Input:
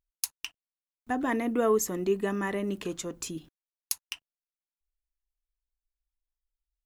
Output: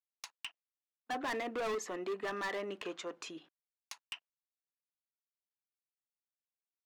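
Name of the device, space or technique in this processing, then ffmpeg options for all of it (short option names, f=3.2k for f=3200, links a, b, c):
walkie-talkie: -af "highpass=590,lowpass=3k,asoftclip=type=hard:threshold=-35dB,agate=range=-21dB:threshold=-59dB:ratio=16:detection=peak,volume=1.5dB"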